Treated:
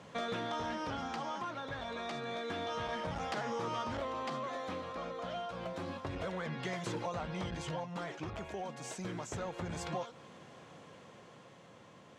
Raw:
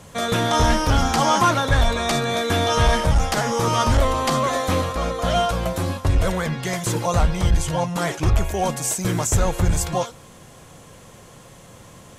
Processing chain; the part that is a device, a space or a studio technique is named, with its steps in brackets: AM radio (band-pass 170–3900 Hz; compression, threshold -27 dBFS, peak gain reduction 13 dB; saturation -19.5 dBFS, distortion -24 dB; tremolo 0.29 Hz, depth 35%); trim -6.5 dB

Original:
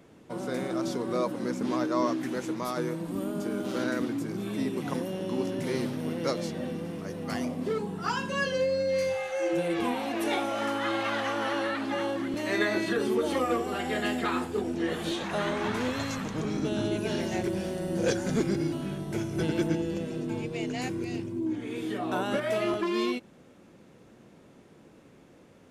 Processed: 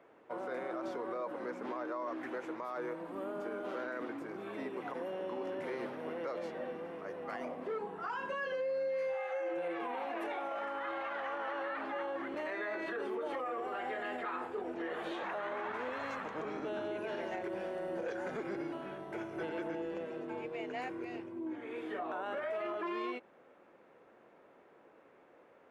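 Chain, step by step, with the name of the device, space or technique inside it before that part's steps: DJ mixer with the lows and highs turned down (three-band isolator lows -22 dB, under 410 Hz, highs -22 dB, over 2.3 kHz; peak limiter -30.5 dBFS, peak gain reduction 11.5 dB)

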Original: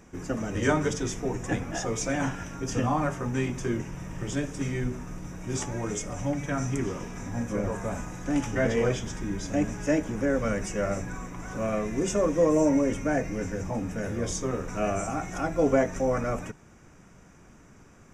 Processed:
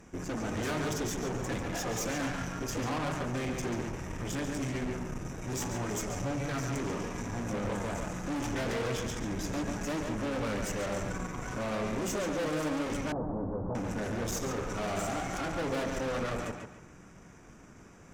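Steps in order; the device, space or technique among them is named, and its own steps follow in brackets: rockabilly slapback (valve stage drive 36 dB, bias 0.8; tape echo 140 ms, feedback 34%, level -3 dB, low-pass 4.7 kHz); 13.12–13.75 s: steep low-pass 1.1 kHz 36 dB/octave; trim +4 dB

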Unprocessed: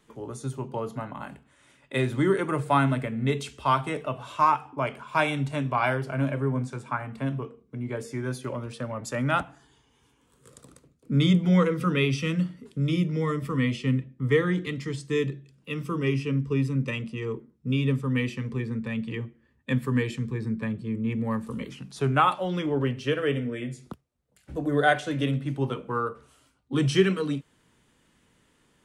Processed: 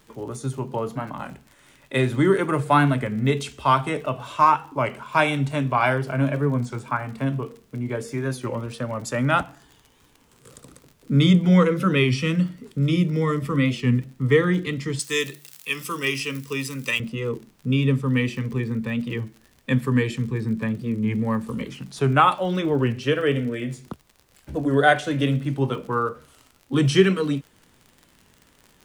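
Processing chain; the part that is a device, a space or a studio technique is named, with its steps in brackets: warped LP (warped record 33 1/3 rpm, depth 100 cents; crackle 56 per s -41 dBFS; pink noise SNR 41 dB); 14.99–17.00 s: tilt EQ +4.5 dB/octave; trim +4.5 dB

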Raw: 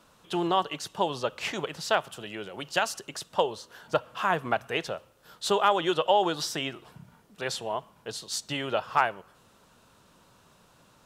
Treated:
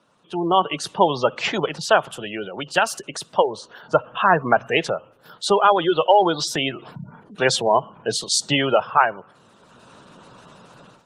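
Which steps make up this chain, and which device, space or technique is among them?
noise-suppressed video call (high-pass 110 Hz 24 dB/octave; spectral gate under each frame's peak -20 dB strong; level rider gain up to 16.5 dB; trim -1 dB; Opus 24 kbps 48 kHz)

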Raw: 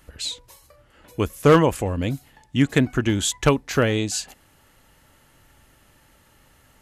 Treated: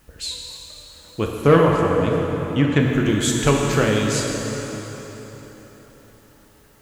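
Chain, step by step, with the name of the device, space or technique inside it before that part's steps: plain cassette with noise reduction switched in (tape noise reduction on one side only decoder only; wow and flutter; white noise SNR 37 dB); 1.24–2.80 s: low-pass that closes with the level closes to 2.9 kHz, closed at -13 dBFS; plate-style reverb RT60 4.2 s, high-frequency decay 0.75×, DRR -1 dB; trim -1 dB

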